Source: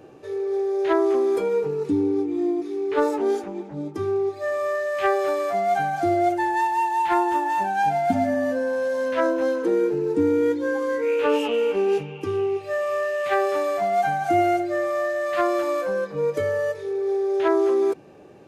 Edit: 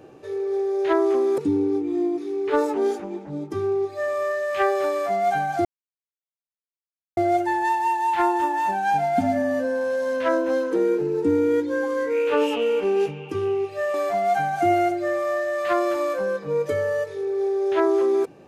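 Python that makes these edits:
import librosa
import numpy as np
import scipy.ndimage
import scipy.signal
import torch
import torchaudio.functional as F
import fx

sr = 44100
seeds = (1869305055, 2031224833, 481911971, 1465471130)

y = fx.edit(x, sr, fx.cut(start_s=1.38, length_s=0.44),
    fx.insert_silence(at_s=6.09, length_s=1.52),
    fx.cut(start_s=12.86, length_s=0.76), tone=tone)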